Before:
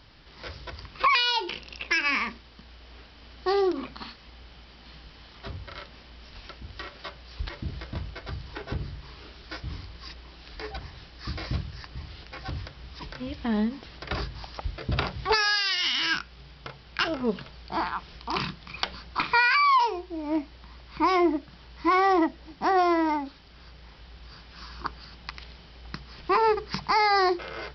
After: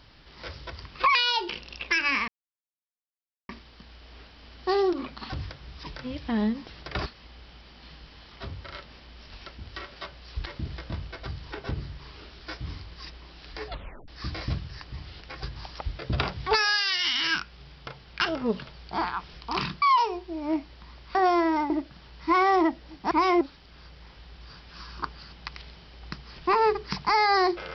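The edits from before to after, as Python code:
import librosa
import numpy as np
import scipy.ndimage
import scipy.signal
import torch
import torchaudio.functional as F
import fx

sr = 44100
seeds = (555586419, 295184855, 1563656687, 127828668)

y = fx.edit(x, sr, fx.insert_silence(at_s=2.28, length_s=1.21),
    fx.tape_stop(start_s=10.71, length_s=0.4),
    fx.move(start_s=12.46, length_s=1.76, to_s=4.09),
    fx.cut(start_s=18.61, length_s=1.03),
    fx.swap(start_s=20.97, length_s=0.3, other_s=22.68, other_length_s=0.55), tone=tone)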